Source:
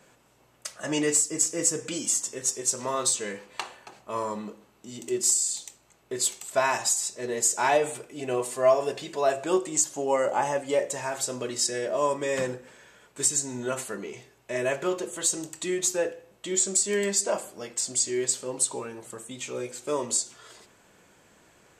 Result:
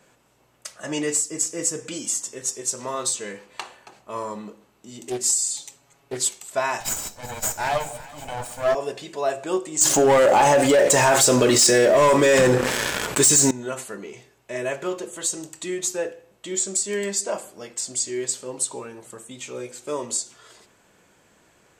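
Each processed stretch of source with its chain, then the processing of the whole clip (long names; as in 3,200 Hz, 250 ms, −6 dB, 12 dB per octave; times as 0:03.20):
0:05.08–0:06.29: comb filter 7.2 ms, depth 96% + highs frequency-modulated by the lows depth 0.42 ms
0:06.80–0:08.75: lower of the sound and its delayed copy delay 1.3 ms + delay that swaps between a low-pass and a high-pass 187 ms, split 810 Hz, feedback 73%, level −14 dB
0:09.81–0:13.51: leveller curve on the samples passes 3 + envelope flattener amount 70%
whole clip: no processing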